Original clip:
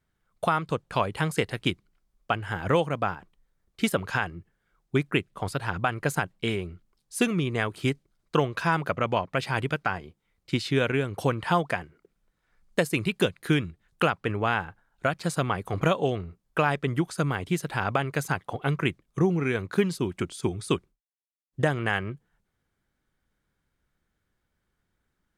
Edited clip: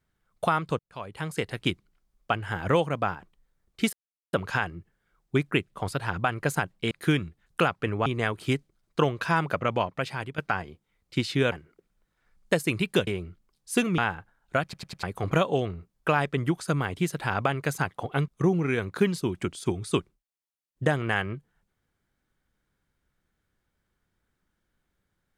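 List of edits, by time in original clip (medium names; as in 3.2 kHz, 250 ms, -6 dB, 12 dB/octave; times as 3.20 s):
0.79–1.72 s: fade in
3.93 s: insert silence 0.40 s
6.51–7.42 s: swap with 13.33–14.48 s
8.96–9.74 s: fade out equal-power, to -13.5 dB
10.88–11.78 s: delete
15.13 s: stutter in place 0.10 s, 4 plays
18.78–19.05 s: delete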